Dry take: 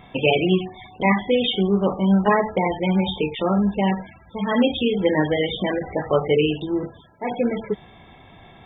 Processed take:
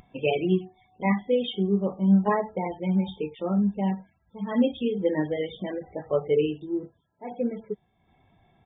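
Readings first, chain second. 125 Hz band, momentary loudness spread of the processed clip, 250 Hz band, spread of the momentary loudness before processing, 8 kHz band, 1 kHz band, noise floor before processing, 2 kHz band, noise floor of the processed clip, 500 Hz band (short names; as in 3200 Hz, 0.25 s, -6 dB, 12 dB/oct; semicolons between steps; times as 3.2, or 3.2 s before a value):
-4.5 dB, 13 LU, -4.0 dB, 10 LU, n/a, -8.5 dB, -48 dBFS, -11.0 dB, -69 dBFS, -5.5 dB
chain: downsampling 8000 Hz; upward compressor, threshold -34 dBFS; spectral expander 1.5:1; gain -7.5 dB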